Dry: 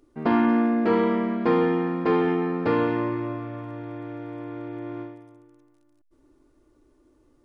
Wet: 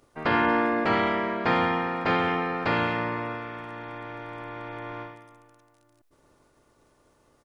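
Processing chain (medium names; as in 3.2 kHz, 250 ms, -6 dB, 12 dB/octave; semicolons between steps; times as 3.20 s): spectral peaks clipped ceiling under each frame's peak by 20 dB; speakerphone echo 330 ms, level -24 dB; trim -2.5 dB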